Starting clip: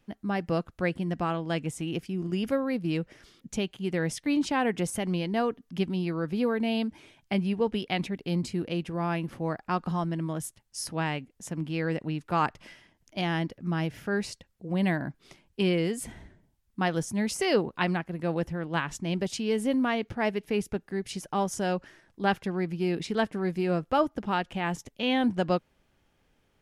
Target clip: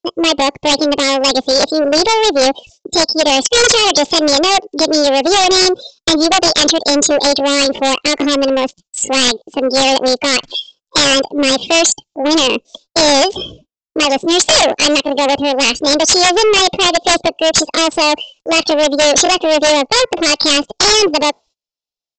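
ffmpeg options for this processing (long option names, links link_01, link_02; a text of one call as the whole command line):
ffmpeg -i in.wav -af "alimiter=limit=-19dB:level=0:latency=1:release=49,afftdn=noise_reduction=26:noise_floor=-44,asetrate=52920,aresample=44100,equalizer=frequency=460:width=0.71:gain=13.5,asetrate=60591,aresample=44100,atempo=0.727827,highshelf=frequency=3800:gain=6,aeval=exprs='0.447*(cos(1*acos(clip(val(0)/0.447,-1,1)))-cos(1*PI/2))+0.0251*(cos(2*acos(clip(val(0)/0.447,-1,1)))-cos(2*PI/2))+0.178*(cos(3*acos(clip(val(0)/0.447,-1,1)))-cos(3*PI/2))+0.0794*(cos(5*acos(clip(val(0)/0.447,-1,1)))-cos(5*PI/2))':channel_layout=same,aexciter=amount=10.6:drive=5.8:freq=2700,aresample=16000,aeval=exprs='1.33*sin(PI/2*8.91*val(0)/1.33)':channel_layout=same,aresample=44100,agate=range=-25dB:threshold=-33dB:ratio=16:detection=peak,volume=-8.5dB" out.wav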